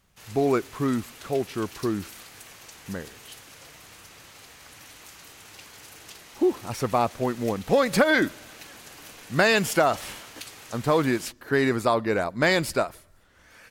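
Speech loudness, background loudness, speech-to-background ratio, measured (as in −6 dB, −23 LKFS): −24.5 LKFS, −44.0 LKFS, 19.5 dB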